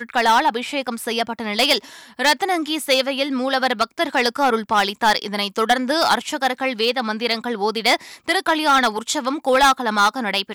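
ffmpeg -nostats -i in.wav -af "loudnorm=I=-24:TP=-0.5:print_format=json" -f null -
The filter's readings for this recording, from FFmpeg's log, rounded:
"input_i" : "-19.0",
"input_tp" : "-7.4",
"input_lra" : "1.5",
"input_thresh" : "-29.0",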